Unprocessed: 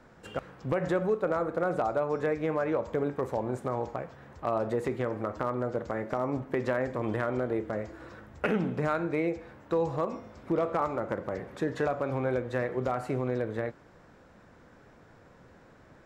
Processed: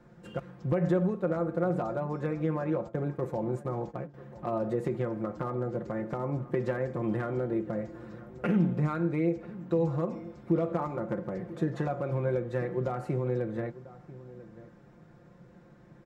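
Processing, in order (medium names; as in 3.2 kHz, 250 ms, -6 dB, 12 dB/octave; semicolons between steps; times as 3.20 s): 2.88–4.14 s: gate -36 dBFS, range -16 dB; peaking EQ 150 Hz +11 dB 2.9 oct; comb 5.7 ms; echo from a far wall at 170 m, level -17 dB; trim -8 dB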